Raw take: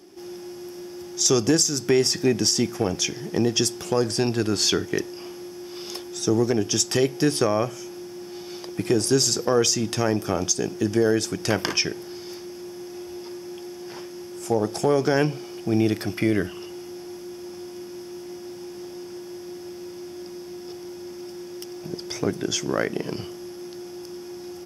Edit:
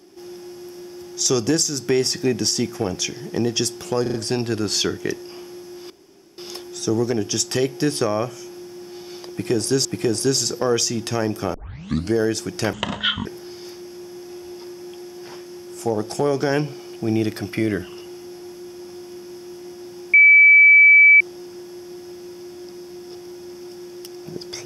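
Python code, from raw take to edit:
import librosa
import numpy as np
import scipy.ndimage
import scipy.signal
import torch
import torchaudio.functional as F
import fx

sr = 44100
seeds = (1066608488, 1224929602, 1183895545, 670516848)

y = fx.edit(x, sr, fx.stutter(start_s=4.02, slice_s=0.04, count=4),
    fx.insert_room_tone(at_s=5.78, length_s=0.48),
    fx.repeat(start_s=8.71, length_s=0.54, count=2),
    fx.tape_start(start_s=10.4, length_s=0.59),
    fx.speed_span(start_s=11.59, length_s=0.31, speed=0.59),
    fx.insert_tone(at_s=18.78, length_s=1.07, hz=2300.0, db=-7.0), tone=tone)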